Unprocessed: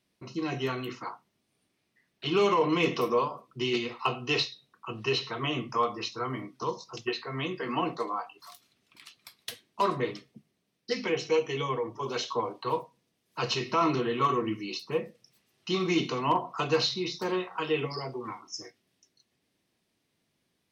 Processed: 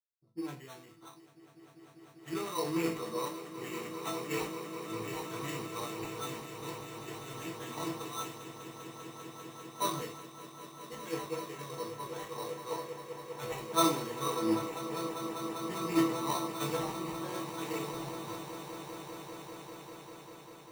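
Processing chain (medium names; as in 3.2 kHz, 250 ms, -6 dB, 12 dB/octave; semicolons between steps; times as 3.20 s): in parallel at -1 dB: peak limiter -27 dBFS, peak gain reduction 11.5 dB; on the sum: chord resonator A2 sus4, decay 0.28 s; level-controlled noise filter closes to 350 Hz, open at -38 dBFS; treble shelf 4.8 kHz -11 dB; sample-rate reducer 4.9 kHz, jitter 0%; on a send: echo with a slow build-up 198 ms, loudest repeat 8, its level -10 dB; on the sum: three bands expanded up and down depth 100%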